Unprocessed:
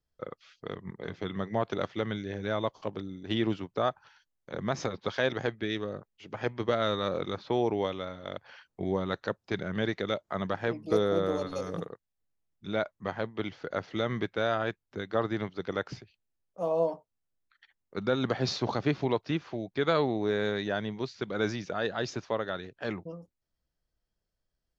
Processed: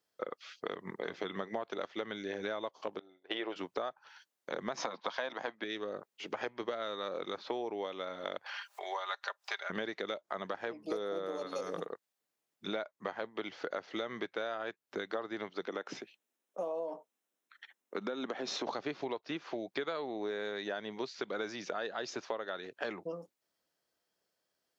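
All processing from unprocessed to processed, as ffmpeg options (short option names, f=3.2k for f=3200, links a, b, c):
-filter_complex "[0:a]asettb=1/sr,asplit=3[a][b][c];[a]atrim=end=2.994[d];[b]atrim=start=2.99:end=3.56,asetpts=PTS-STARTPTS,afade=t=in:d=0.004:c=qsin,afade=t=out:st=0.566:d=0.004:c=qsin,agate=range=-33dB:threshold=-31dB:ratio=3:release=100:detection=peak,lowpass=3k,lowshelf=f=330:t=q:w=1.5:g=-13.5[e];[c]atrim=start=3.556[f];[d][e]acrossfade=d=0.004:c1=hsin:c2=qsin[g];[g][f]acrossfade=d=0.004:c1=qsin:c2=hsin,asettb=1/sr,asplit=3[h][i][j];[h]atrim=end=4.774[k];[i]atrim=start=4.77:end=5.64,asetpts=PTS-STARTPTS,afade=t=in:d=0.004:c=qsin,afade=t=out:st=0.866:d=0.004:c=qsin,agate=range=-33dB:threshold=-53dB:ratio=3:release=100:detection=peak,acontrast=62,highpass=f=160:w=0.5412,highpass=f=160:w=1.3066,equalizer=f=400:t=q:w=4:g=-9,equalizer=f=700:t=q:w=4:g=4,equalizer=f=1k:t=q:w=4:g=9,lowpass=f=6.5k:w=0.5412,lowpass=f=6.5k:w=1.3066[l];[j]atrim=start=5.636[m];[k][l]acrossfade=d=0.004:c1=hsin:c2=qsin[n];[n][m]acrossfade=d=0.004:c1=qsin:c2=hsin,asettb=1/sr,asplit=3[o][p][q];[o]atrim=end=8.464[r];[p]atrim=start=8.46:end=9.7,asetpts=PTS-STARTPTS,afade=t=in:d=0.004:c=qsin,afade=t=out:st=1.236:d=0.004:c=qsin,highpass=f=750:w=0.5412,highpass=f=750:w=1.3066,aecho=1:1:5:0.52,atrim=end_sample=54684,acompressor=mode=upward:threshold=-42dB:ratio=2.5:attack=3.2:release=140:knee=2.83:detection=peak[s];[q]atrim=start=9.696[t];[r][s]acrossfade=d=0.004:c1=hsin:c2=qsin[u];[u][t]acrossfade=d=0.004:c1=qsin:c2=hsin,asettb=1/sr,asplit=3[v][w][x];[v]atrim=end=15.664[y];[w]atrim=start=15.66:end=18.67,asetpts=PTS-STARTPTS,afade=t=in:d=0.004:c=qsin,afade=t=out:st=3.006:d=0.004:c=qsin,bandreject=f=4.6k:w=5.2,acompressor=threshold=-35dB:ratio=2:attack=3.2:release=140:knee=1:detection=peak,highpass=f=220:t=q:w=1.5[z];[x]atrim=start=18.666[aa];[y][z]acrossfade=d=0.004:c1=hsin:c2=qsin[ab];[ab][aa]acrossfade=d=0.004:c1=qsin:c2=hsin,highpass=340,acompressor=threshold=-41dB:ratio=10,volume=7dB"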